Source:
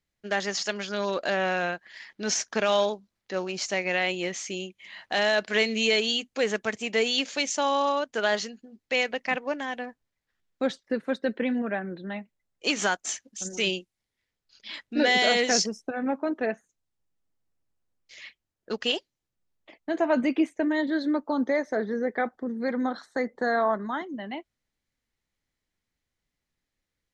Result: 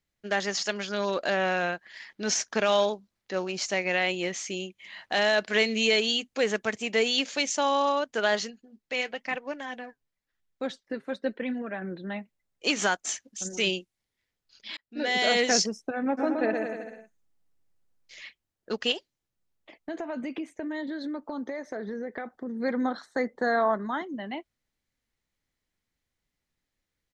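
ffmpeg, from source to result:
ffmpeg -i in.wav -filter_complex "[0:a]asettb=1/sr,asplit=3[link_01][link_02][link_03];[link_01]atrim=end=8.504[link_04];[link_02]atrim=start=8.5:end=11.82,asetpts=PTS-STARTPTS,afade=type=in:duration=0.004:curve=qsin,afade=type=out:start_time=3.316:duration=0.004:curve=qsin,flanger=delay=0.3:depth=7.4:regen=55:speed=1:shape=triangular[link_05];[link_03]atrim=start=11.816[link_06];[link_04][link_05]acrossfade=duration=0.004:curve1=hsin:curve2=qsin[link_07];[link_07][link_06]acrossfade=duration=0.004:curve1=qsin:curve2=hsin,asplit=3[link_08][link_09][link_10];[link_08]afade=type=out:start_time=16.17:duration=0.02[link_11];[link_09]aecho=1:1:120|222|308.7|382.4|445|498.3|543.5:0.631|0.398|0.251|0.158|0.1|0.0631|0.0398,afade=type=in:start_time=16.17:duration=0.02,afade=type=out:start_time=18.21:duration=0.02[link_12];[link_10]afade=type=in:start_time=18.21:duration=0.02[link_13];[link_11][link_12][link_13]amix=inputs=3:normalize=0,asettb=1/sr,asplit=3[link_14][link_15][link_16];[link_14]atrim=end=18.924[link_17];[link_15]atrim=start=18.92:end=22.6,asetpts=PTS-STARTPTS,afade=type=in:duration=0.004:curve=qsin,afade=type=out:start_time=3.676:duration=0.004:curve=qsin,acompressor=threshold=-31dB:ratio=6:attack=3.2:release=140:knee=1:detection=peak[link_18];[link_16]atrim=start=22.596[link_19];[link_17][link_18]acrossfade=duration=0.004:curve1=hsin:curve2=qsin[link_20];[link_20][link_19]acrossfade=duration=0.004:curve1=qsin:curve2=hsin,asplit=2[link_21][link_22];[link_21]atrim=end=14.77,asetpts=PTS-STARTPTS,afade=type=out:start_time=14.766:duration=0.004:curve=hsin[link_23];[link_22]atrim=start=14.77,asetpts=PTS-STARTPTS,afade=type=in:duration=0.62[link_24];[link_23][link_24]concat=n=2:v=0:a=1" out.wav

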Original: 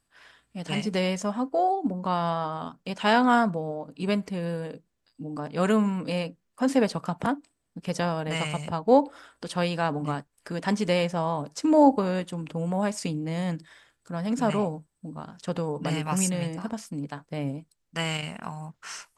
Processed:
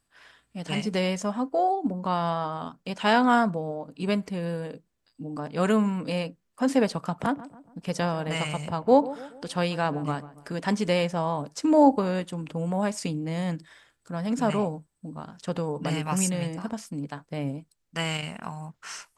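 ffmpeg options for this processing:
ffmpeg -i in.wav -filter_complex "[0:a]asettb=1/sr,asplit=3[link_01][link_02][link_03];[link_01]atrim=end=7.044[link_04];[link_02]atrim=start=7.04:end=10.59,asetpts=PTS-STARTPTS,afade=type=in:duration=0.004:curve=qsin,afade=type=out:start_time=3.546:duration=0.004:curve=qsin,asplit=2[link_05][link_06];[link_06]adelay=141,lowpass=frequency=1400:poles=1,volume=-16dB,asplit=2[link_07][link_08];[link_08]adelay=141,lowpass=frequency=1400:poles=1,volume=0.47,asplit=2[link_09][link_10];[link_10]adelay=141,lowpass=frequency=1400:poles=1,volume=0.47,asplit=2[link_11][link_12];[link_12]adelay=141,lowpass=frequency=1400:poles=1,volume=0.47[link_13];[link_05][link_07][link_09][link_11][link_13]amix=inputs=5:normalize=0,atrim=end_sample=156555[link_14];[link_03]atrim=start=10.586[link_15];[link_04][link_14]acrossfade=duration=0.004:curve1=hsin:curve2=qsin[link_16];[link_16][link_15]acrossfade=duration=0.004:curve1=qsin:curve2=hsin" out.wav

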